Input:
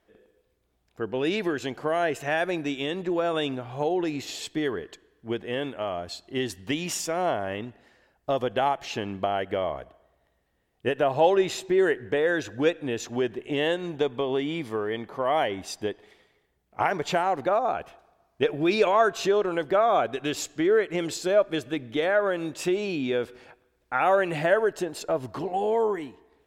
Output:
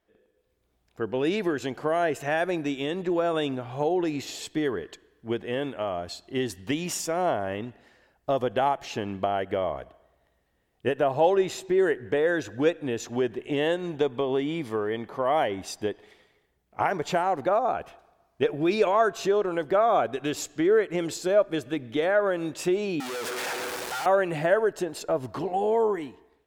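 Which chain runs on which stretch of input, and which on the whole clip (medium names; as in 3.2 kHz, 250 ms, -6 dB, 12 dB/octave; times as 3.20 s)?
23.00–24.06 s: one-bit comparator + frequency weighting A
whole clip: dynamic bell 3.1 kHz, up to -4 dB, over -39 dBFS, Q 0.71; level rider gain up to 8 dB; trim -7 dB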